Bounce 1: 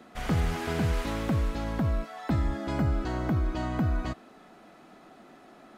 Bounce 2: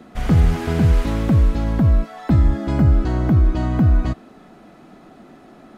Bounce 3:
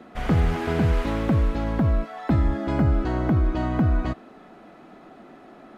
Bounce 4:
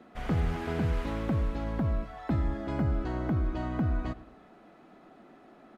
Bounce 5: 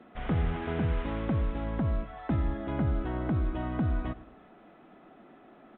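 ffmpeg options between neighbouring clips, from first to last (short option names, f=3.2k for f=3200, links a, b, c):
-af "lowshelf=f=330:g=10.5,volume=3.5dB"
-af "bass=f=250:g=-7,treble=f=4k:g=-8"
-filter_complex "[0:a]asplit=2[a][b];[b]adelay=110,lowpass=f=2k:p=1,volume=-17.5dB,asplit=2[c][d];[d]adelay=110,lowpass=f=2k:p=1,volume=0.41,asplit=2[e][f];[f]adelay=110,lowpass=f=2k:p=1,volume=0.41[g];[a][c][e][g]amix=inputs=4:normalize=0,volume=-8dB"
-ar 8000 -c:a pcm_mulaw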